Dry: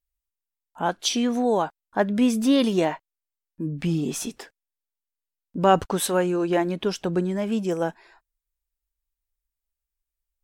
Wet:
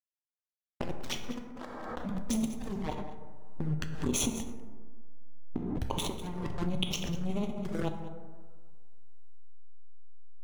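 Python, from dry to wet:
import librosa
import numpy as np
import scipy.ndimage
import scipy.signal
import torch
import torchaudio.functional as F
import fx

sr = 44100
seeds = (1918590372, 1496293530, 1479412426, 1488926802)

p1 = fx.dereverb_blind(x, sr, rt60_s=1.3)
p2 = fx.peak_eq(p1, sr, hz=700.0, db=-10.0, octaves=0.23)
p3 = fx.over_compress(p2, sr, threshold_db=-31.0, ratio=-1.0)
p4 = fx.backlash(p3, sr, play_db=-21.0)
p5 = fx.power_curve(p4, sr, exponent=2.0, at=(1.3, 2.05))
p6 = fx.env_flanger(p5, sr, rest_ms=7.7, full_db=-32.0)
p7 = p6 + fx.echo_single(p6, sr, ms=197, db=-15.5, dry=0)
p8 = fx.rev_plate(p7, sr, seeds[0], rt60_s=1.6, hf_ratio=0.35, predelay_ms=0, drr_db=4.0)
p9 = fx.pre_swell(p8, sr, db_per_s=24.0)
y = p9 * 10.0 ** (1.5 / 20.0)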